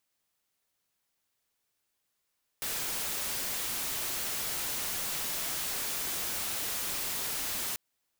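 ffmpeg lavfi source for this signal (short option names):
-f lavfi -i "anoisesrc=c=white:a=0.0346:d=5.14:r=44100:seed=1"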